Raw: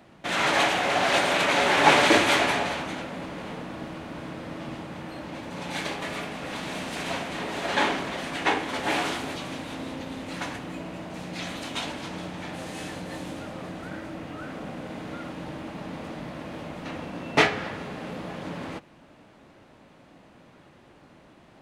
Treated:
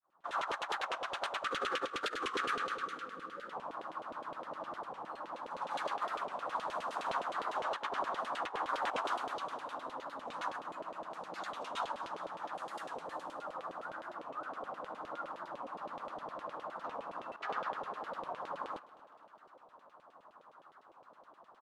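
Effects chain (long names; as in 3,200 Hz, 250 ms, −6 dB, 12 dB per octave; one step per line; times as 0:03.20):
fade in at the beginning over 0.69 s
first-order pre-emphasis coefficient 0.9
gain on a spectral selection 0:01.45–0:03.54, 540–1,100 Hz −19 dB
high shelf with overshoot 1,600 Hz −11 dB, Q 3
auto-filter band-pass saw down 9.7 Hz 450–3,200 Hz
compressor whose output falls as the input rises −49 dBFS, ratio −0.5
on a send: repeating echo 232 ms, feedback 46%, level −20.5 dB
on the sum: wow of a warped record 45 rpm, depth 160 cents
level +14 dB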